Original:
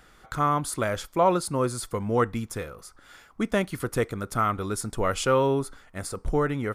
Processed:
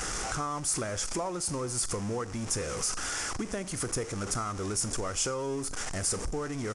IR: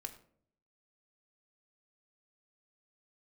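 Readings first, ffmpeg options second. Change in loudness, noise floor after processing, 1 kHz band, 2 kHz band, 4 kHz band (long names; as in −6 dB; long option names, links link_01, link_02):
−5.0 dB, −38 dBFS, −9.5 dB, −4.5 dB, +2.0 dB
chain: -filter_complex "[0:a]aeval=exprs='val(0)+0.5*0.0447*sgn(val(0))':channel_layout=same,acompressor=threshold=-28dB:ratio=6,asplit=2[link_01][link_02];[link_02]highshelf=frequency=4000:width_type=q:width=3:gain=12[link_03];[1:a]atrim=start_sample=2205[link_04];[link_03][link_04]afir=irnorm=-1:irlink=0,volume=-4.5dB[link_05];[link_01][link_05]amix=inputs=2:normalize=0,aresample=22050,aresample=44100,volume=-5.5dB"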